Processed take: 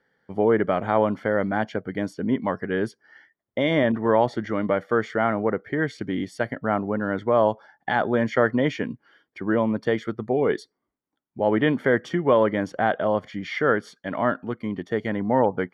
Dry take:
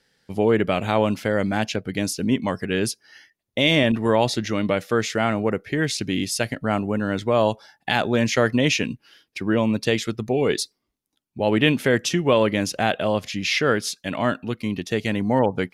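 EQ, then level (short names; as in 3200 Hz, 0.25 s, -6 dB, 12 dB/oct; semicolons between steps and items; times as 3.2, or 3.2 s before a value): polynomial smoothing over 41 samples; low shelf 81 Hz -10.5 dB; low shelf 360 Hz -4 dB; +1.5 dB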